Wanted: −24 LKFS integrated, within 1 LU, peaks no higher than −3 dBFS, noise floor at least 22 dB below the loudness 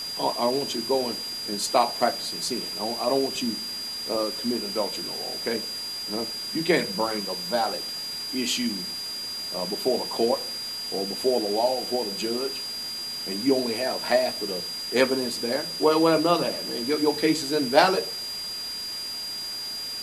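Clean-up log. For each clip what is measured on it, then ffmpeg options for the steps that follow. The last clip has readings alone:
interfering tone 4,800 Hz; level of the tone −31 dBFS; background noise floor −33 dBFS; target noise floor −48 dBFS; integrated loudness −25.5 LKFS; sample peak −3.0 dBFS; target loudness −24.0 LKFS
→ -af "bandreject=frequency=4800:width=30"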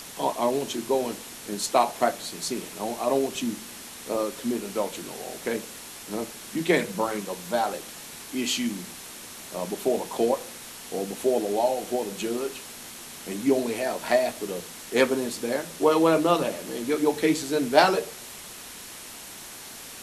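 interfering tone none found; background noise floor −42 dBFS; target noise floor −49 dBFS
→ -af "afftdn=noise_reduction=7:noise_floor=-42"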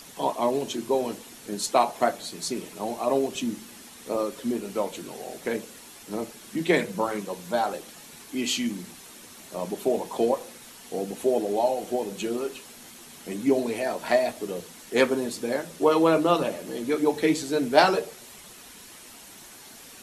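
background noise floor −47 dBFS; target noise floor −49 dBFS
→ -af "afftdn=noise_reduction=6:noise_floor=-47"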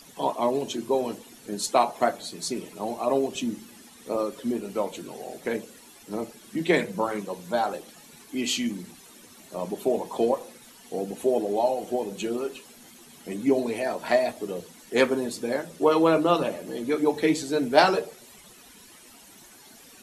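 background noise floor −51 dBFS; integrated loudness −26.5 LKFS; sample peak −3.0 dBFS; target loudness −24.0 LKFS
→ -af "volume=2.5dB,alimiter=limit=-3dB:level=0:latency=1"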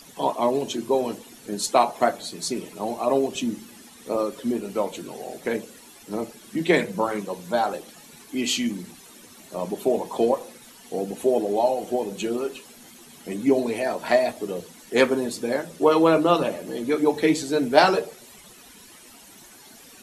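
integrated loudness −24.5 LKFS; sample peak −3.0 dBFS; background noise floor −48 dBFS

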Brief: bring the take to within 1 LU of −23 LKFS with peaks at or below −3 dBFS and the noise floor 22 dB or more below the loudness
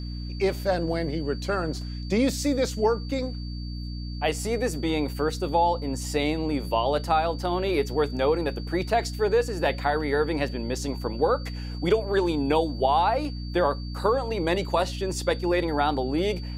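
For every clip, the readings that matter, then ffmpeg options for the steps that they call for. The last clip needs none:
mains hum 60 Hz; hum harmonics up to 300 Hz; level of the hum −31 dBFS; interfering tone 4,600 Hz; level of the tone −44 dBFS; integrated loudness −26.0 LKFS; sample peak −9.5 dBFS; target loudness −23.0 LKFS
→ -af "bandreject=frequency=60:width_type=h:width=4,bandreject=frequency=120:width_type=h:width=4,bandreject=frequency=180:width_type=h:width=4,bandreject=frequency=240:width_type=h:width=4,bandreject=frequency=300:width_type=h:width=4"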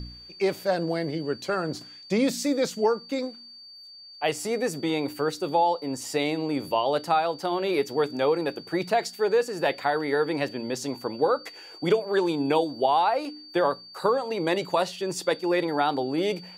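mains hum none found; interfering tone 4,600 Hz; level of the tone −44 dBFS
→ -af "bandreject=frequency=4600:width=30"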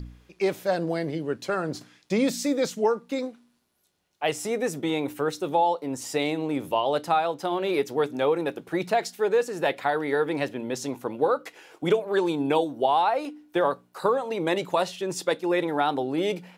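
interfering tone none found; integrated loudness −26.5 LKFS; sample peak −9.5 dBFS; target loudness −23.0 LKFS
→ -af "volume=3.5dB"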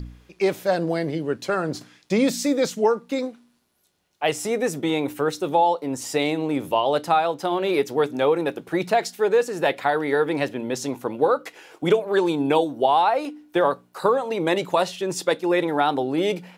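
integrated loudness −23.0 LKFS; sample peak −6.0 dBFS; background noise floor −62 dBFS

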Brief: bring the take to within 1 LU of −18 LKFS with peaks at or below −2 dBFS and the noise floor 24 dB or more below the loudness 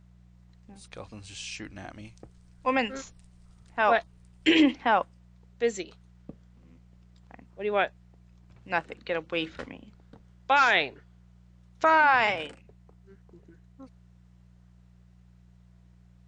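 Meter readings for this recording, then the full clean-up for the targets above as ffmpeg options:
mains hum 60 Hz; hum harmonics up to 180 Hz; level of the hum −53 dBFS; integrated loudness −26.0 LKFS; sample peak −11.0 dBFS; target loudness −18.0 LKFS
→ -af "bandreject=frequency=60:width_type=h:width=4,bandreject=frequency=120:width_type=h:width=4,bandreject=frequency=180:width_type=h:width=4"
-af "volume=8dB"

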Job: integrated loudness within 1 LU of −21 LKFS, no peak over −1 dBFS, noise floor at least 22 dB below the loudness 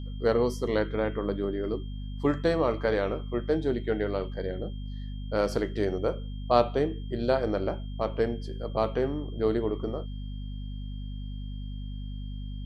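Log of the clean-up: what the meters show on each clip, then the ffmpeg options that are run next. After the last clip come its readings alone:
mains hum 50 Hz; hum harmonics up to 250 Hz; level of the hum −33 dBFS; interfering tone 3,200 Hz; level of the tone −54 dBFS; integrated loudness −30.0 LKFS; sample peak −6.0 dBFS; target loudness −21.0 LKFS
→ -af "bandreject=frequency=50:width_type=h:width=4,bandreject=frequency=100:width_type=h:width=4,bandreject=frequency=150:width_type=h:width=4,bandreject=frequency=200:width_type=h:width=4,bandreject=frequency=250:width_type=h:width=4"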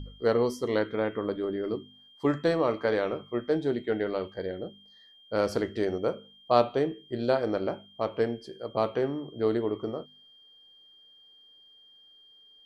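mains hum none found; interfering tone 3,200 Hz; level of the tone −54 dBFS
→ -af "bandreject=frequency=3200:width=30"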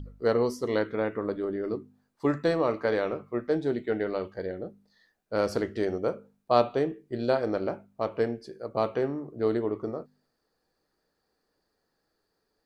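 interfering tone none found; integrated loudness −29.5 LKFS; sample peak −6.5 dBFS; target loudness −21.0 LKFS
→ -af "volume=8.5dB,alimiter=limit=-1dB:level=0:latency=1"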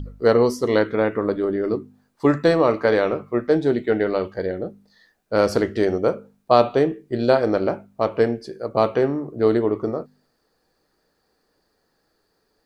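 integrated loudness −21.0 LKFS; sample peak −1.0 dBFS; background noise floor −70 dBFS

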